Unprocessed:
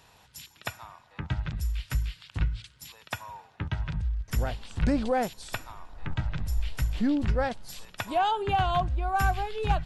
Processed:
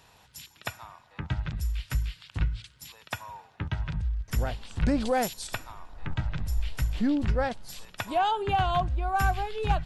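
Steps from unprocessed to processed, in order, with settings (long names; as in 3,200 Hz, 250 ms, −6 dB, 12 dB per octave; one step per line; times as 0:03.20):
0:05.00–0:05.47: high-shelf EQ 3,600 Hz +10.5 dB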